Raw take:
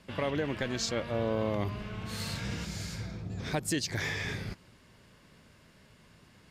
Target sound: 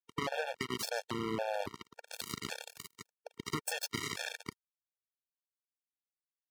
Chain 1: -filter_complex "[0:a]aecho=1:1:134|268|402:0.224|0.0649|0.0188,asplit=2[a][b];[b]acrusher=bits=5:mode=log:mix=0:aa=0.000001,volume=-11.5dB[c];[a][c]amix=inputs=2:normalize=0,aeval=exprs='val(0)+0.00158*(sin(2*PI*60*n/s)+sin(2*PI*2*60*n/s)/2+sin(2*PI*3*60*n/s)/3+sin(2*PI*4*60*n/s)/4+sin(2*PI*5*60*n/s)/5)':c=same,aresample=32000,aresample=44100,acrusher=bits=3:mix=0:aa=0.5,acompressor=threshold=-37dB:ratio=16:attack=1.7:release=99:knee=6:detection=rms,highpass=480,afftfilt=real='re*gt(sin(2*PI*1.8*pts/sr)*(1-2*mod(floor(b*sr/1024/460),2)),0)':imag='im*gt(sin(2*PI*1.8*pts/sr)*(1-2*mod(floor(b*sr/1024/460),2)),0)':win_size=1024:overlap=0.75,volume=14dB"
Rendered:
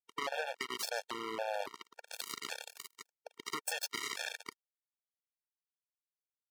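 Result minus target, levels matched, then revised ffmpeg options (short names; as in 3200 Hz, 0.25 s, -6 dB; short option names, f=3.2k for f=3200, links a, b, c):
125 Hz band -17.5 dB
-filter_complex "[0:a]aecho=1:1:134|268|402:0.224|0.0649|0.0188,asplit=2[a][b];[b]acrusher=bits=5:mode=log:mix=0:aa=0.000001,volume=-11.5dB[c];[a][c]amix=inputs=2:normalize=0,aeval=exprs='val(0)+0.00158*(sin(2*PI*60*n/s)+sin(2*PI*2*60*n/s)/2+sin(2*PI*3*60*n/s)/3+sin(2*PI*4*60*n/s)/4+sin(2*PI*5*60*n/s)/5)':c=same,aresample=32000,aresample=44100,acrusher=bits=3:mix=0:aa=0.5,acompressor=threshold=-37dB:ratio=16:attack=1.7:release=99:knee=6:detection=rms,highpass=130,afftfilt=real='re*gt(sin(2*PI*1.8*pts/sr)*(1-2*mod(floor(b*sr/1024/460),2)),0)':imag='im*gt(sin(2*PI*1.8*pts/sr)*(1-2*mod(floor(b*sr/1024/460),2)),0)':win_size=1024:overlap=0.75,volume=14dB"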